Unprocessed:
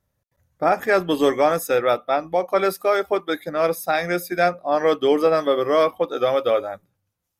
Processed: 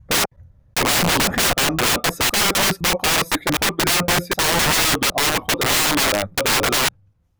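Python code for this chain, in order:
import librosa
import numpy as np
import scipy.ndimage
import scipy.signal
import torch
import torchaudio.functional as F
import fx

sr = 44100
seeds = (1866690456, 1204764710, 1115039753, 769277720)

y = fx.block_reorder(x, sr, ms=255.0, group=3)
y = fx.riaa(y, sr, side='playback')
y = (np.mod(10.0 ** (20.0 / 20.0) * y + 1.0, 2.0) - 1.0) / 10.0 ** (20.0 / 20.0)
y = y * librosa.db_to_amplitude(7.5)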